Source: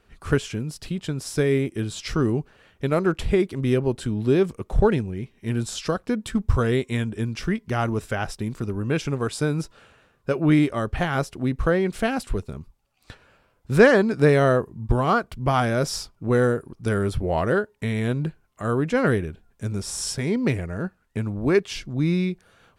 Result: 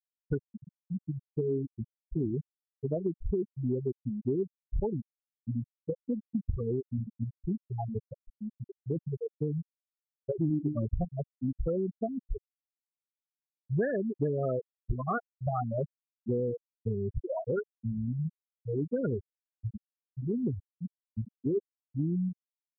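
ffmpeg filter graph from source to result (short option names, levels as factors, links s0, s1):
-filter_complex "[0:a]asettb=1/sr,asplit=3[s0][s1][s2];[s0]atrim=end=10.374[s3];[s1]atrim=start=10.37:end=11.05,asetpts=PTS-STARTPTS,afade=t=in:d=0.004:c=qsin,afade=t=out:st=0.676:d=0.004:c=qsin,lowshelf=f=370:g=11.5,bandreject=f=50:t=h:w=6,bandreject=f=100:t=h:w=6,bandreject=f=150:t=h:w=6,bandreject=f=200:t=h:w=6,bandreject=f=250:t=h:w=6,bandreject=f=300:t=h:w=6,bandreject=f=350:t=h:w=6,bandreject=f=400:t=h:w=6,bandreject=f=450:t=h:w=6[s4];[s2]atrim=start=11.046[s5];[s3][s4]acrossfade=d=0.004:c1=hsin:c2=qsin[s6];[s6][s5]acrossfade=d=0.004:c1=qsin:c2=hsin,lowpass=f=3500:p=1,afftfilt=real='re*gte(hypot(re,im),0.447)':imag='im*gte(hypot(re,im),0.447)':win_size=1024:overlap=0.75,acompressor=threshold=0.0794:ratio=6,volume=0.596"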